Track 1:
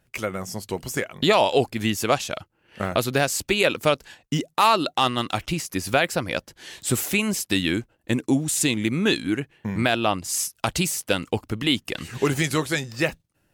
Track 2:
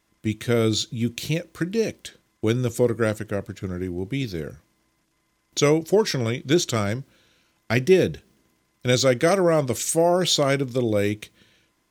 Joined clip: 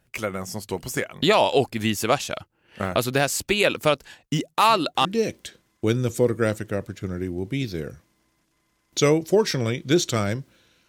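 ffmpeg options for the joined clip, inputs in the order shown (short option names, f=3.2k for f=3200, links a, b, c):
-filter_complex "[1:a]asplit=2[a][b];[0:a]apad=whole_dur=10.88,atrim=end=10.88,atrim=end=5.052[c];[b]atrim=start=1.648:end=7.48[d];[a]atrim=start=1.17:end=1.65,asetpts=PTS-STARTPTS,volume=-17.5dB,afade=t=in:d=0.004:c=hsin,afade=t=out:st=0.476:d=0.004:c=hsin,adelay=201537S[e];[c][d]acrossfade=d=0.004:c1=hsin:c2=hsin[f];[f][e]amix=inputs=2:normalize=0"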